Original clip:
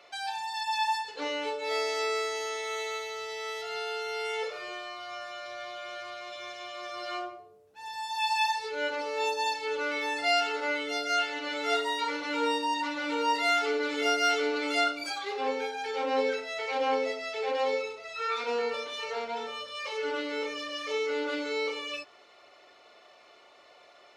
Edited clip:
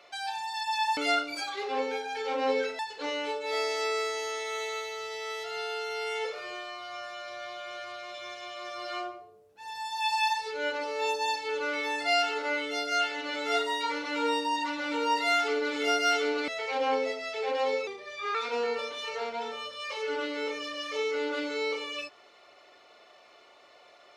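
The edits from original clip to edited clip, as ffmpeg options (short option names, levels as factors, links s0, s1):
-filter_complex "[0:a]asplit=6[s0][s1][s2][s3][s4][s5];[s0]atrim=end=0.972[s6];[s1]atrim=start=14.658:end=16.482[s7];[s2]atrim=start=0.968:end=14.662[s8];[s3]atrim=start=16.478:end=17.874[s9];[s4]atrim=start=17.87:end=18.3,asetpts=PTS-STARTPTS,asetrate=39690,aresample=44100[s10];[s5]atrim=start=18.296[s11];[s6][s7]acrossfade=d=0.004:c1=hsin:c2=hsin[s12];[s12][s8]acrossfade=d=0.004:c1=hsin:c2=hsin[s13];[s13][s9]acrossfade=d=0.004:c1=hsin:c2=hsin[s14];[s14][s10]acrossfade=d=0.004:c1=hsin:c2=hsin[s15];[s15][s11]acrossfade=d=0.004:c1=hsin:c2=hsin"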